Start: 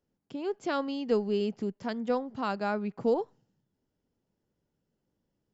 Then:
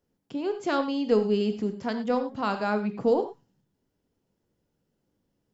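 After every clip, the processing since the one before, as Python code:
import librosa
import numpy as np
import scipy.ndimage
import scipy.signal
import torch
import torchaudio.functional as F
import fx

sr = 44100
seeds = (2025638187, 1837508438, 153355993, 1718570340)

y = fx.rev_gated(x, sr, seeds[0], gate_ms=130, shape='flat', drr_db=7.5)
y = y * 10.0 ** (3.5 / 20.0)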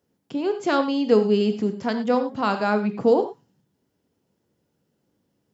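y = scipy.signal.sosfilt(scipy.signal.butter(2, 88.0, 'highpass', fs=sr, output='sos'), x)
y = y * 10.0 ** (5.0 / 20.0)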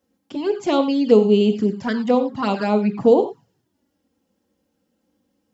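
y = fx.env_flanger(x, sr, rest_ms=3.8, full_db=-17.5)
y = y * 10.0 ** (5.0 / 20.0)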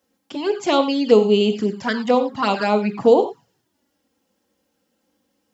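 y = fx.low_shelf(x, sr, hz=450.0, db=-10.0)
y = y * 10.0 ** (5.5 / 20.0)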